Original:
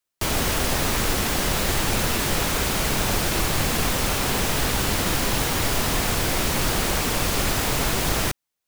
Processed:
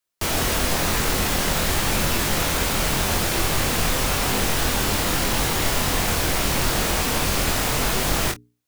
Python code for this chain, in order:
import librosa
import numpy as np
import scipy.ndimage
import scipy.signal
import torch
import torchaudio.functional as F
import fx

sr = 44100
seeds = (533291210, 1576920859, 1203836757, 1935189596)

p1 = fx.hum_notches(x, sr, base_hz=60, count=7)
y = p1 + fx.room_early_taps(p1, sr, ms=(24, 50), db=(-5.0, -17.0), dry=0)